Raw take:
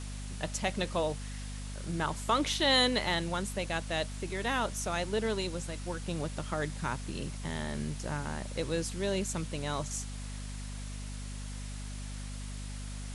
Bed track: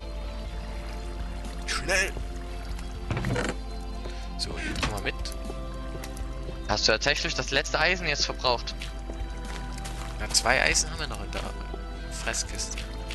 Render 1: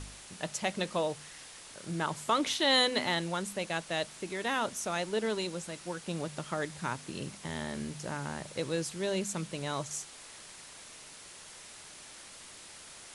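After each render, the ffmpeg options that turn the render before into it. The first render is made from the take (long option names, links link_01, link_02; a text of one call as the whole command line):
ffmpeg -i in.wav -af "bandreject=frequency=50:width_type=h:width=4,bandreject=frequency=100:width_type=h:width=4,bandreject=frequency=150:width_type=h:width=4,bandreject=frequency=200:width_type=h:width=4,bandreject=frequency=250:width_type=h:width=4" out.wav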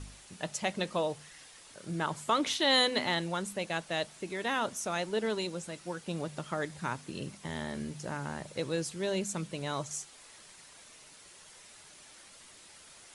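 ffmpeg -i in.wav -af "afftdn=noise_reduction=6:noise_floor=-50" out.wav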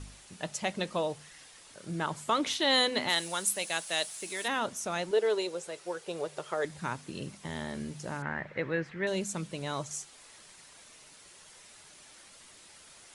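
ffmpeg -i in.wav -filter_complex "[0:a]asplit=3[link_01][link_02][link_03];[link_01]afade=type=out:start_time=3.08:duration=0.02[link_04];[link_02]aemphasis=mode=production:type=riaa,afade=type=in:start_time=3.08:duration=0.02,afade=type=out:start_time=4.47:duration=0.02[link_05];[link_03]afade=type=in:start_time=4.47:duration=0.02[link_06];[link_04][link_05][link_06]amix=inputs=3:normalize=0,asettb=1/sr,asplit=3[link_07][link_08][link_09];[link_07]atrim=end=5.114[link_10];[link_08]atrim=start=5.11:end=6.65,asetpts=PTS-STARTPTS,afade=type=in:duration=0.004:curve=qsin,afade=type=out:start_time=1.536:duration=0.004:curve=qsin,lowshelf=frequency=320:width_type=q:width=3:gain=-8.5[link_11];[link_09]atrim=start=6.646[link_12];[link_10][link_11]acrossfade=duration=0.004:curve1=hsin:curve2=qsin[link_13];[link_13][link_12]acrossfade=duration=0.004:curve1=qsin:curve2=hsin,asettb=1/sr,asplit=3[link_14][link_15][link_16];[link_14]atrim=end=8.224[link_17];[link_15]atrim=start=8.22:end=9.07,asetpts=PTS-STARTPTS,afade=type=in:duration=0.004:curve=qsin,afade=type=out:start_time=0.846:duration=0.004:curve=qsin,lowpass=frequency=1900:width_type=q:width=4.1[link_18];[link_16]atrim=start=9.066[link_19];[link_17][link_18]acrossfade=duration=0.004:curve1=hsin:curve2=qsin[link_20];[link_20][link_19]acrossfade=duration=0.004:curve1=qsin:curve2=hsin" out.wav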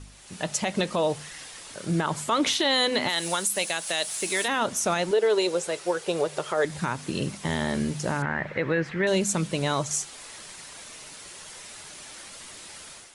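ffmpeg -i in.wav -af "dynaudnorm=framelen=120:gausssize=5:maxgain=11dB,alimiter=limit=-14.5dB:level=0:latency=1:release=108" out.wav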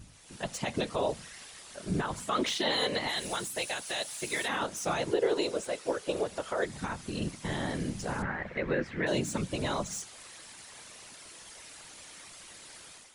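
ffmpeg -i in.wav -filter_complex "[0:a]afftfilt=real='hypot(re,im)*cos(2*PI*random(0))':imag='hypot(re,im)*sin(2*PI*random(1))':win_size=512:overlap=0.75,acrossover=split=5100[link_01][link_02];[link_02]asoftclip=type=tanh:threshold=-38dB[link_03];[link_01][link_03]amix=inputs=2:normalize=0" out.wav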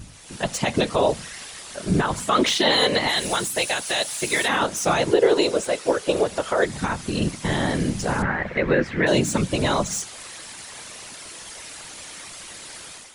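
ffmpeg -i in.wav -af "volume=10.5dB" out.wav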